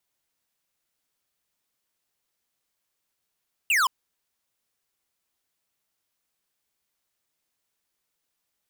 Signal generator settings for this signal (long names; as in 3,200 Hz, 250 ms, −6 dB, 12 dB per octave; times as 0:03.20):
single falling chirp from 2,900 Hz, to 970 Hz, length 0.17 s square, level −21 dB